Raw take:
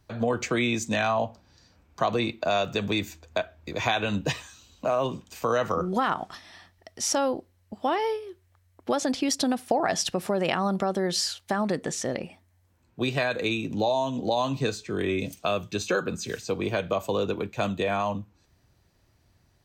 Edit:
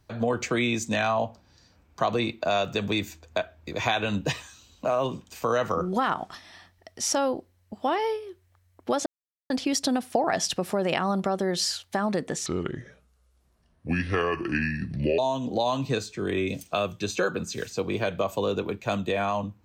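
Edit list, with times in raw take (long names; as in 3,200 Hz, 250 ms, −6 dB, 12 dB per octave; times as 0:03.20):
0:09.06: splice in silence 0.44 s
0:12.02–0:13.90: play speed 69%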